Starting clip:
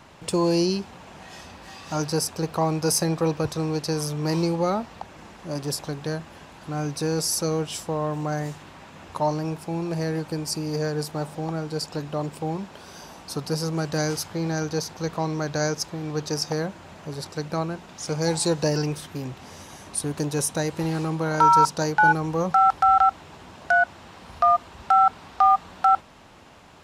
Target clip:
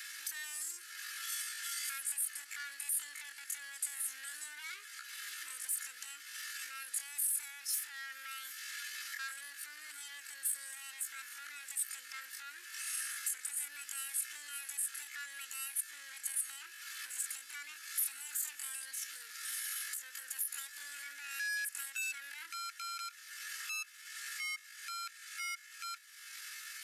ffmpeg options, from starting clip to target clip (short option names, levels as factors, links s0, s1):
-af "aecho=1:1:4.1:0.64,acompressor=threshold=0.01:ratio=2.5,alimiter=level_in=1.88:limit=0.0631:level=0:latency=1:release=48,volume=0.531,aresample=16000,asoftclip=type=hard:threshold=0.0106,aresample=44100,lowshelf=f=620:t=q:w=3:g=-13,asetrate=78577,aresample=44100,atempo=0.561231,aderivative,volume=2.66"